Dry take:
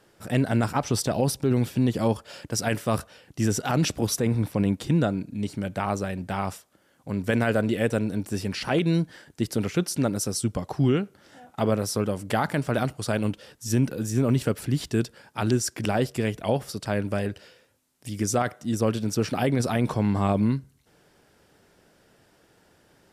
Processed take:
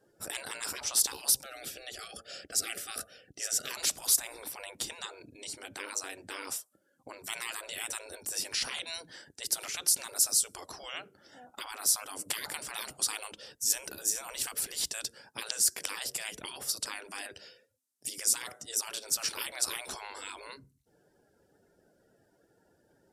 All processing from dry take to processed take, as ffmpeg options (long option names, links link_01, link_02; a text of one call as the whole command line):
ffmpeg -i in.wav -filter_complex "[0:a]asettb=1/sr,asplit=3[link_01][link_02][link_03];[link_01]atrim=end=1.434[link_04];[link_02]atrim=start=1.43:end=3.71,asetpts=PTS-STARTPTS,afade=type=in:duration=0.004:curve=qsin,afade=type=out:start_time=2.276:duration=0.004:curve=qsin,asuperstop=centerf=960:order=12:qfactor=2.6,highshelf=frequency=3700:gain=-5.5[link_05];[link_03]atrim=start=3.706[link_06];[link_04][link_05]acrossfade=duration=0.004:curve1=hsin:curve2=qsin[link_07];[link_07][link_06]acrossfade=duration=0.004:curve1=qsin:curve2=hsin,afftfilt=real='re*lt(hypot(re,im),0.0794)':imag='im*lt(hypot(re,im),0.0794)':win_size=1024:overlap=0.75,afftdn=noise_reduction=20:noise_floor=-58,bass=frequency=250:gain=-5,treble=frequency=4000:gain=13,volume=-3.5dB" out.wav